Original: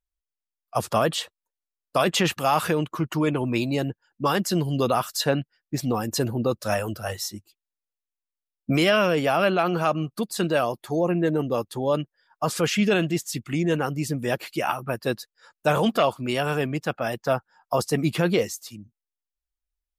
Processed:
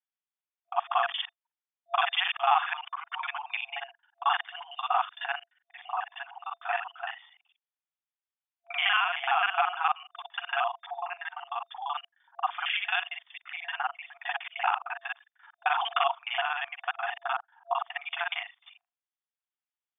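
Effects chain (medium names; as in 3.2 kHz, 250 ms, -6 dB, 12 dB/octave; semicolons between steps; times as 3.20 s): time reversed locally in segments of 38 ms; FFT band-pass 680–3600 Hz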